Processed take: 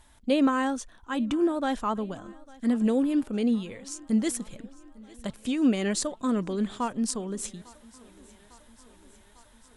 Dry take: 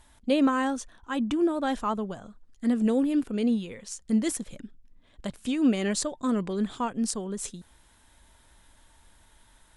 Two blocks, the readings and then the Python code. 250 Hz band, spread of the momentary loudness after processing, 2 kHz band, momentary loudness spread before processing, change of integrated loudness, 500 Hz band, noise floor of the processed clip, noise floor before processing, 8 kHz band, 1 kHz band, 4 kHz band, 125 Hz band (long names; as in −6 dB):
0.0 dB, 15 LU, 0.0 dB, 14 LU, 0.0 dB, 0.0 dB, −57 dBFS, −60 dBFS, 0.0 dB, 0.0 dB, 0.0 dB, 0.0 dB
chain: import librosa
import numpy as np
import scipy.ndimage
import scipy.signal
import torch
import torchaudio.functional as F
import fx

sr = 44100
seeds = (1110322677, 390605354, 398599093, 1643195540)

y = fx.echo_thinned(x, sr, ms=851, feedback_pct=69, hz=180.0, wet_db=-23.0)